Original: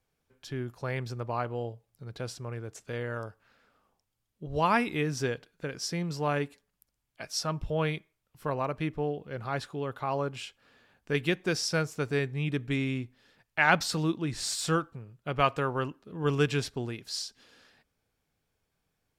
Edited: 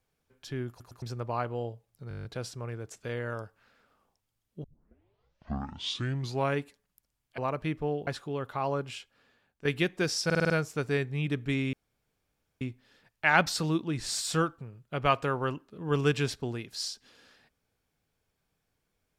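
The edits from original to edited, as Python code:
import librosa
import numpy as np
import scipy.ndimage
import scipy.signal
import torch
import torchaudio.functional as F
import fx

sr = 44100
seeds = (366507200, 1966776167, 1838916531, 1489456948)

y = fx.edit(x, sr, fx.stutter_over(start_s=0.69, slice_s=0.11, count=3),
    fx.stutter(start_s=2.09, slice_s=0.02, count=9),
    fx.tape_start(start_s=4.48, length_s=1.93),
    fx.cut(start_s=7.22, length_s=1.32),
    fx.cut(start_s=9.23, length_s=0.31),
    fx.fade_out_to(start_s=10.28, length_s=0.84, floor_db=-12.0),
    fx.stutter(start_s=11.72, slice_s=0.05, count=6),
    fx.insert_room_tone(at_s=12.95, length_s=0.88), tone=tone)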